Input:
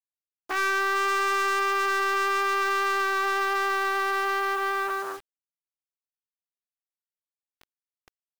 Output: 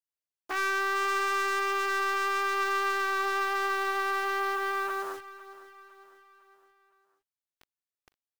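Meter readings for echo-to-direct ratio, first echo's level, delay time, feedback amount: -16.5 dB, -17.5 dB, 506 ms, 50%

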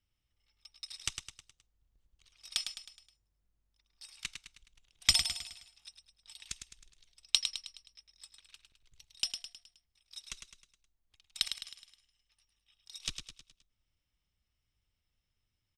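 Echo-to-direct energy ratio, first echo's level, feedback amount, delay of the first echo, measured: -6.5 dB, -7.5 dB, 47%, 105 ms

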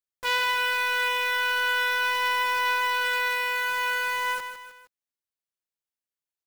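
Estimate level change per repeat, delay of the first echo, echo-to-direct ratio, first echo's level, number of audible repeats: -6.5 dB, 156 ms, -8.5 dB, -9.5 dB, 3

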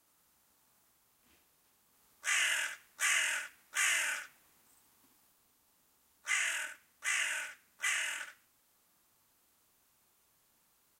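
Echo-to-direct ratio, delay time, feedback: -7.0 dB, 72 ms, no regular repeats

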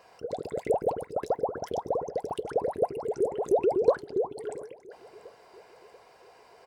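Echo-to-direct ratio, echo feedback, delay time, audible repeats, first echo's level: -21.0 dB, 52%, 687 ms, 3, -22.5 dB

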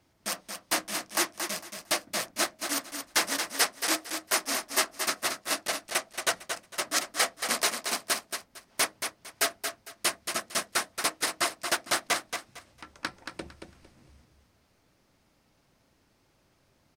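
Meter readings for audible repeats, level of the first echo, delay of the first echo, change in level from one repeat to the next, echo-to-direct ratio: 3, -7.0 dB, 227 ms, -13.0 dB, -7.0 dB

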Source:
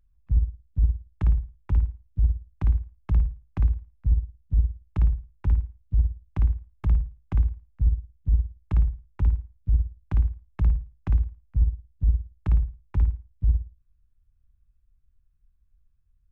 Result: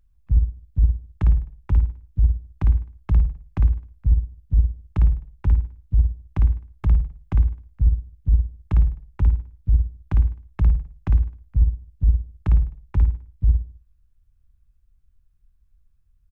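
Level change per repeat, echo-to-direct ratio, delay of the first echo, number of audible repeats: -5.5 dB, -20.0 dB, 103 ms, 2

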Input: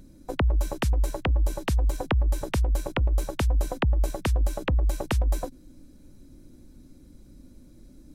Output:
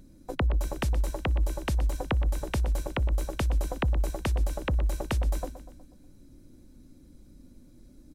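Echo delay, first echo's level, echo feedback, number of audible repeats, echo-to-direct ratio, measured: 122 ms, -13.0 dB, 50%, 4, -11.5 dB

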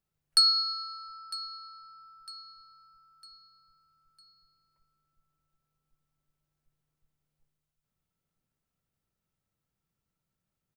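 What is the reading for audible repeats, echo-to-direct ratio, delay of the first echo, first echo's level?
3, -16.0 dB, 954 ms, -17.0 dB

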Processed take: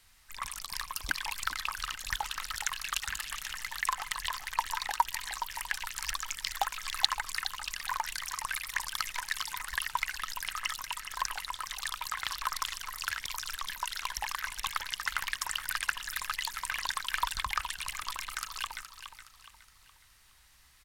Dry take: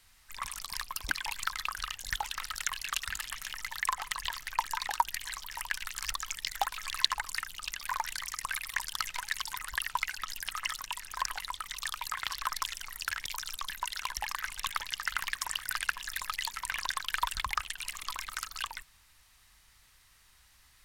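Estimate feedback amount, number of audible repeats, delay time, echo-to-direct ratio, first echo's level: 38%, 3, 418 ms, -9.5 dB, -10.0 dB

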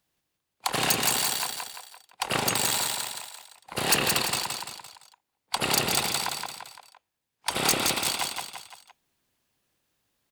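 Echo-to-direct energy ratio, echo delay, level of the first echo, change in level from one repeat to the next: -3.0 dB, 171 ms, -4.0 dB, -6.5 dB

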